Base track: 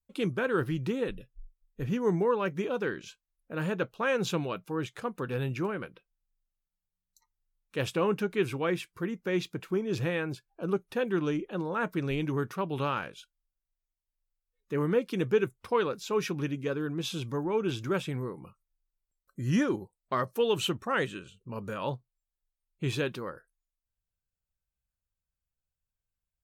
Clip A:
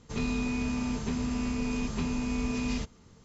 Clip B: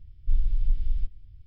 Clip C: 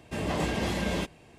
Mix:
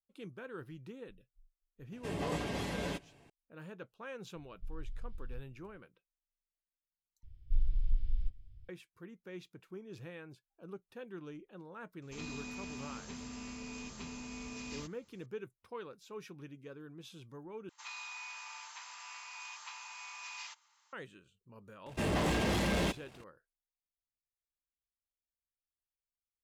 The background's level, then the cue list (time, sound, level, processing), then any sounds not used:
base track -17.5 dB
1.92 s: add C -8 dB + comb 7.1 ms, depth 34%
4.35 s: add B -15.5 dB + compression, threshold -21 dBFS
7.23 s: replace with B -7 dB
12.02 s: add A -11 dB + tilt EQ +2 dB/octave
17.69 s: replace with A -5 dB + elliptic high-pass 880 Hz, stop band 60 dB
21.86 s: add C -9.5 dB + waveshaping leveller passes 3

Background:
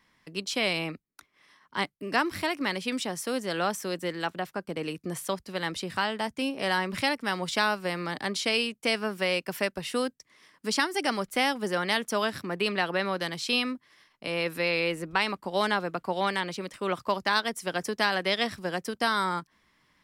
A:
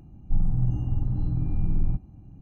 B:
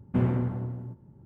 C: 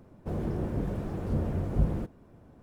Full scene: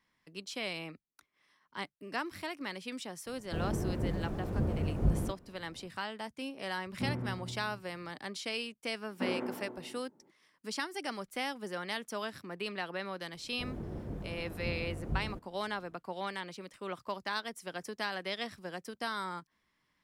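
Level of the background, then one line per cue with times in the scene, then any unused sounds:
background -10.5 dB
3.26 s: add C -2.5 dB
6.86 s: add B -11 dB
9.06 s: add B -2.5 dB + high-pass 280 Hz 24 dB/octave
13.33 s: add C -9.5 dB
not used: A

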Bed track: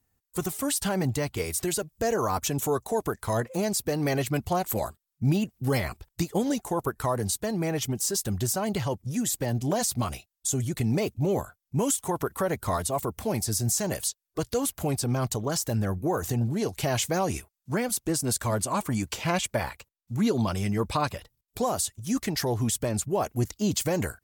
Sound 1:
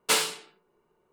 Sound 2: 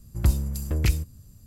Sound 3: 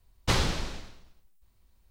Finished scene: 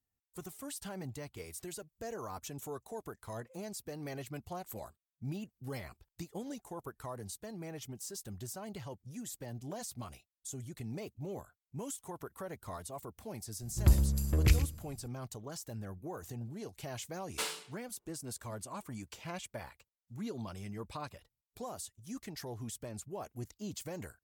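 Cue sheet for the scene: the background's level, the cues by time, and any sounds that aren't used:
bed track -16 dB
13.62 s: add 2 -3.5 dB + delay 116 ms -14 dB
17.29 s: add 1 -13 dB
not used: 3

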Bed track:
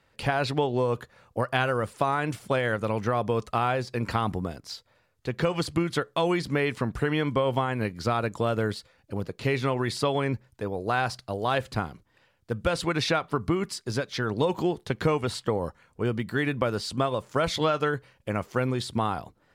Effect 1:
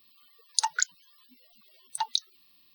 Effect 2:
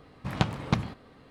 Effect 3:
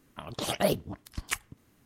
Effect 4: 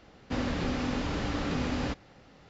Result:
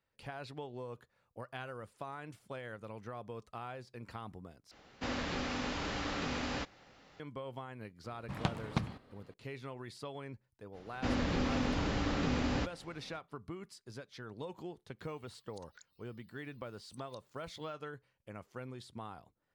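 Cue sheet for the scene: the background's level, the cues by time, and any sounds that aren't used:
bed track -19 dB
4.71 s: replace with 4 -1 dB + bass shelf 480 Hz -9 dB
8.04 s: add 2 -8 dB
10.72 s: add 4 -2 dB, fades 0.05 s
14.99 s: add 1 -15.5 dB + compression, threshold -40 dBFS
not used: 3

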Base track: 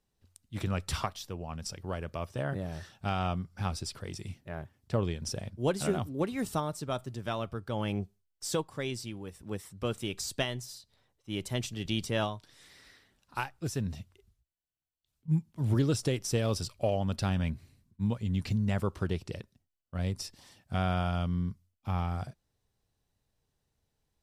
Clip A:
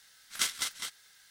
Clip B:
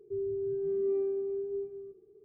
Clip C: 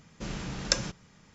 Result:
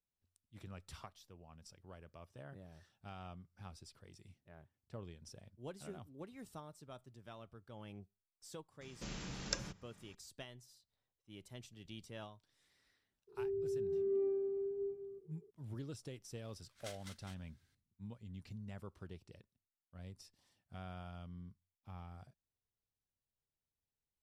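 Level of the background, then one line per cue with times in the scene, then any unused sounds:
base track -19 dB
8.81 s: add C -10 dB + three bands compressed up and down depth 40%
13.27 s: add B -5 dB, fades 0.02 s
16.45 s: add A -17.5 dB + tilt EQ -2 dB/octave

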